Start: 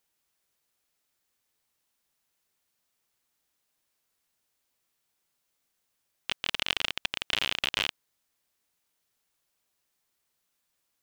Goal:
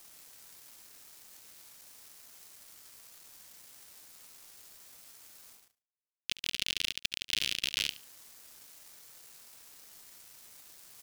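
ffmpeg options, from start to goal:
-filter_complex "[0:a]highpass=f=1100:p=1,areverse,acompressor=mode=upward:threshold=0.0158:ratio=2.5,areverse,aexciter=amount=5.6:drive=3.3:freq=4300,aeval=exprs='clip(val(0),-1,0.251)':c=same,asplit=2[s0][s1];[s1]highpass=f=720:p=1,volume=7.94,asoftclip=type=tanh:threshold=0.891[s2];[s0][s2]amix=inputs=2:normalize=0,lowpass=f=3300:p=1,volume=0.501,aeval=exprs='sgn(val(0))*max(abs(val(0))-0.0168,0)':c=same,asplit=2[s3][s4];[s4]aecho=0:1:71|142:0.141|0.0339[s5];[s3][s5]amix=inputs=2:normalize=0,volume=0.447"

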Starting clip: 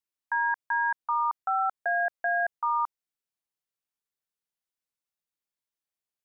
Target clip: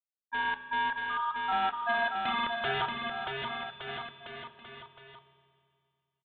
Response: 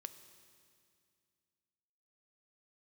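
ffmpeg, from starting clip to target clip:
-filter_complex "[0:a]agate=range=0.1:threshold=0.0398:ratio=16:detection=peak,asettb=1/sr,asplit=3[s0][s1][s2];[s0]atrim=end=0.904[s3];[s1]atrim=start=0.9:end=1.52,asetpts=PTS-STARTPTS,afade=t=in:d=0.004:c=qsin,afade=t=out:st=0.616:d=0.004:c=qsin,highpass=810[s4];[s2]atrim=start=1.516[s5];[s3][s4]acrossfade=d=0.004:c1=hsin:c2=qsin[s6];[s6][s5]acrossfade=d=0.004:c1=qsin:c2=hsin,asplit=3[s7][s8][s9];[s7]afade=t=out:st=2.22:d=0.02[s10];[s8]acontrast=70,afade=t=in:st=2.22:d=0.02,afade=t=out:st=2.8:d=0.02[s11];[s9]afade=t=in:st=2.8:d=0.02[s12];[s10][s11][s12]amix=inputs=3:normalize=0,aeval=exprs='(mod(10*val(0)+1,2)-1)/10':c=same,flanger=delay=6.4:depth=6.4:regen=72:speed=0.63:shape=sinusoidal,adynamicsmooth=sensitivity=5.5:basefreq=1200,aecho=1:1:630|1166|1621|2008|2336:0.631|0.398|0.251|0.158|0.1[s13];[1:a]atrim=start_sample=2205[s14];[s13][s14]afir=irnorm=-1:irlink=0,aresample=8000,aresample=44100,volume=2"

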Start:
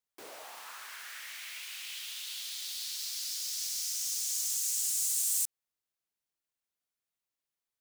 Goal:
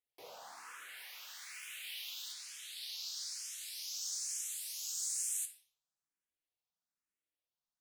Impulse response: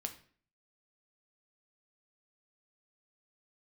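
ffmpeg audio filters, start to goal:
-filter_complex "[0:a]asetnsamples=n=441:p=0,asendcmd='0.97 highshelf g 2;2.32 highshelf g -12',highshelf=f=12000:g=-5.5[s0];[1:a]atrim=start_sample=2205,asetrate=31311,aresample=44100[s1];[s0][s1]afir=irnorm=-1:irlink=0,asplit=2[s2][s3];[s3]afreqshift=1.1[s4];[s2][s4]amix=inputs=2:normalize=1,volume=0.794"

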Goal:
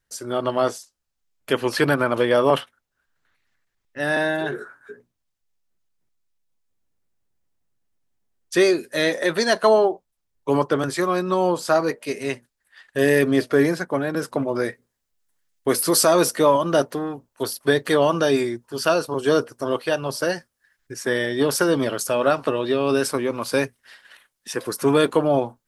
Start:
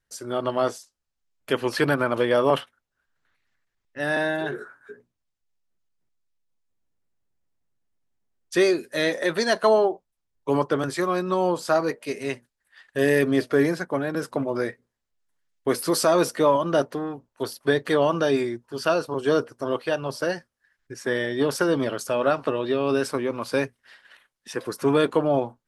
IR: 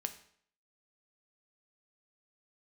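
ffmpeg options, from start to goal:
-af "asetnsamples=n=441:p=0,asendcmd='14.64 highshelf g 9.5',highshelf=f=6300:g=3,volume=1.33"

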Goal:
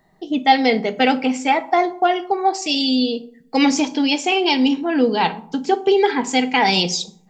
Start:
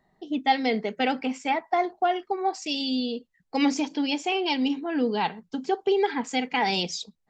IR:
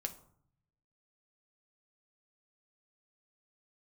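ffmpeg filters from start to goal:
-filter_complex "[0:a]asplit=2[s0][s1];[1:a]atrim=start_sample=2205,highshelf=f=6200:g=9[s2];[s1][s2]afir=irnorm=-1:irlink=0,volume=1.78[s3];[s0][s3]amix=inputs=2:normalize=0"

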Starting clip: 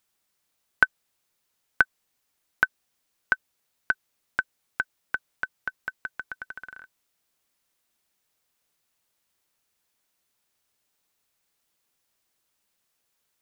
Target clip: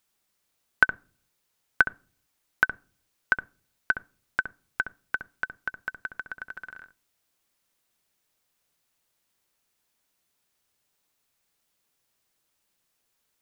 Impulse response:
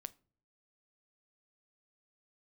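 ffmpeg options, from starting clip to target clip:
-filter_complex "[0:a]asplit=2[s0][s1];[s1]tiltshelf=f=640:g=6.5[s2];[1:a]atrim=start_sample=2205,lowpass=3400,adelay=66[s3];[s2][s3]afir=irnorm=-1:irlink=0,volume=0.631[s4];[s0][s4]amix=inputs=2:normalize=0"

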